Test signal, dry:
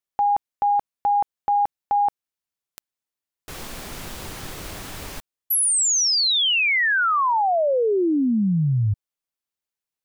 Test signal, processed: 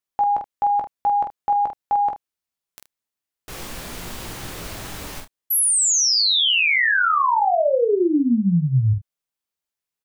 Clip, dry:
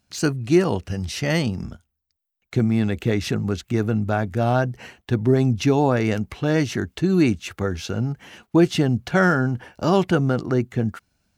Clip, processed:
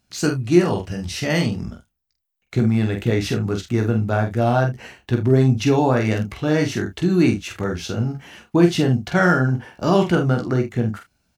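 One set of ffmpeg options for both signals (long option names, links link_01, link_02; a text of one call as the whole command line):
ffmpeg -i in.wav -af "aecho=1:1:17|46|76:0.376|0.531|0.168" out.wav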